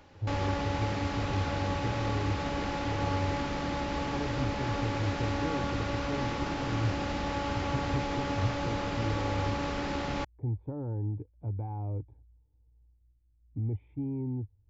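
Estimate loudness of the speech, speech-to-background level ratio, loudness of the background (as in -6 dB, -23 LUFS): -36.5 LUFS, -3.5 dB, -33.0 LUFS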